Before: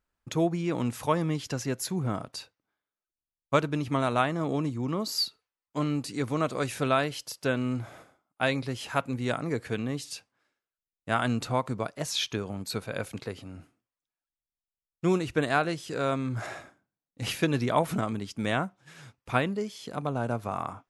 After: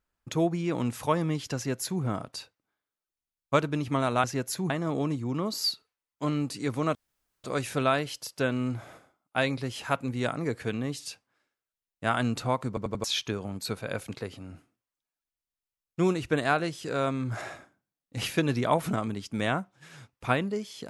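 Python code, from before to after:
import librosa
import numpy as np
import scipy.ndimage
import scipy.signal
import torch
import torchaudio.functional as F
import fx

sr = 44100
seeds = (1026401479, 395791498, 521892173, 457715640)

y = fx.edit(x, sr, fx.duplicate(start_s=1.56, length_s=0.46, to_s=4.24),
    fx.insert_room_tone(at_s=6.49, length_s=0.49),
    fx.stutter_over(start_s=11.73, slice_s=0.09, count=4), tone=tone)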